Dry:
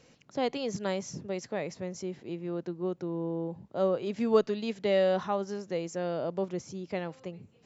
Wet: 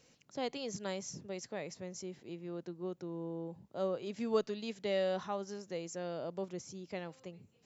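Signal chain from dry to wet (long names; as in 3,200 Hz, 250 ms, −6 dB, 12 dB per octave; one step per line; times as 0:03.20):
high-shelf EQ 4,500 Hz +10 dB
level −8 dB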